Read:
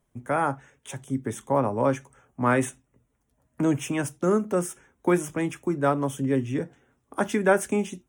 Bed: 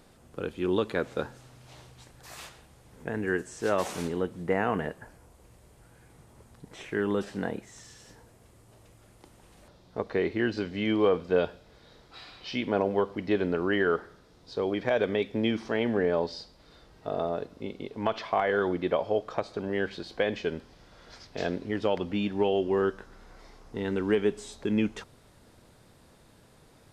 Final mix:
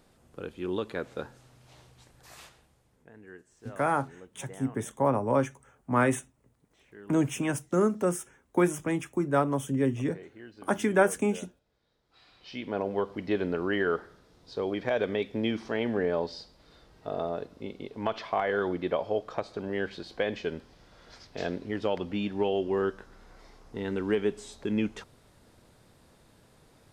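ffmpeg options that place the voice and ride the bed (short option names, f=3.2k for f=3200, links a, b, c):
-filter_complex "[0:a]adelay=3500,volume=-2dB[a];[1:a]volume=13dB,afade=t=out:st=2.34:d=0.74:silence=0.177828,afade=t=in:st=12.02:d=1.13:silence=0.125893[b];[a][b]amix=inputs=2:normalize=0"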